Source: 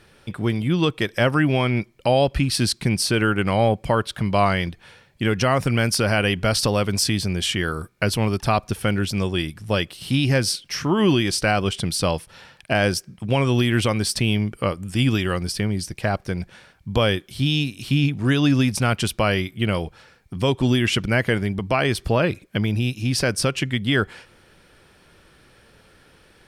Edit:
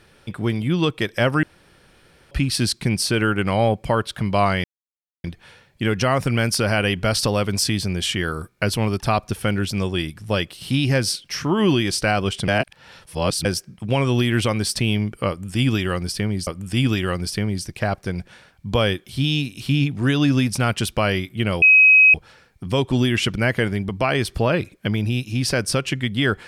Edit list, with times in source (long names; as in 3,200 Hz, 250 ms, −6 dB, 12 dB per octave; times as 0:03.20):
0:01.43–0:02.31: fill with room tone
0:04.64: splice in silence 0.60 s
0:11.88–0:12.85: reverse
0:14.69–0:15.87: repeat, 2 plays
0:19.84: insert tone 2,540 Hz −8 dBFS 0.52 s